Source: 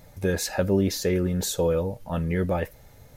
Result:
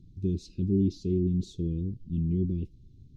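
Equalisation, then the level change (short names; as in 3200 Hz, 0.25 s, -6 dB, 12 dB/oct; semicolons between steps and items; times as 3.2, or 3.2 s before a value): Chebyshev band-stop 360–1800 Hz, order 4; Butterworth band-stop 1800 Hz, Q 0.6; tape spacing loss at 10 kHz 35 dB; 0.0 dB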